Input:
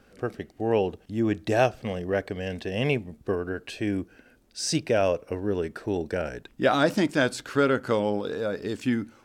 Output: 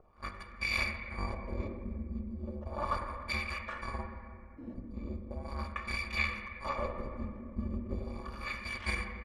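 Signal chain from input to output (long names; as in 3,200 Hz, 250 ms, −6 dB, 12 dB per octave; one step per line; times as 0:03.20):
samples in bit-reversed order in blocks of 256 samples
auto-filter low-pass sine 0.37 Hz 270–2,700 Hz
on a send at −3 dB: convolution reverb RT60 2.3 s, pre-delay 4 ms
on the sum: pitch shifter −3 semitones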